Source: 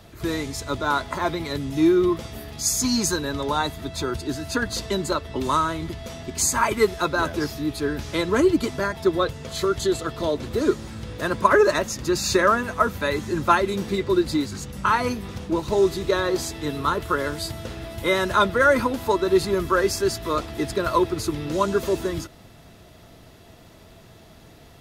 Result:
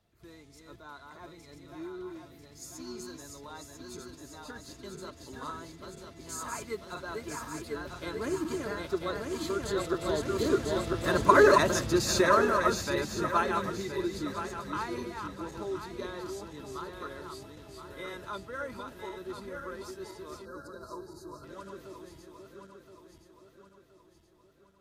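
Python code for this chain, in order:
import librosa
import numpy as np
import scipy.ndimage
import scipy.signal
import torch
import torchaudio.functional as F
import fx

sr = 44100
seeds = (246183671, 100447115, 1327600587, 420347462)

y = fx.reverse_delay_fb(x, sr, ms=504, feedback_pct=69, wet_db=-4.0)
y = fx.doppler_pass(y, sr, speed_mps=5, closest_m=4.2, pass_at_s=11.45)
y = fx.spec_box(y, sr, start_s=20.45, length_s=0.99, low_hz=1700.0, high_hz=3800.0, gain_db=-23)
y = y * librosa.db_to_amplitude(-3.0)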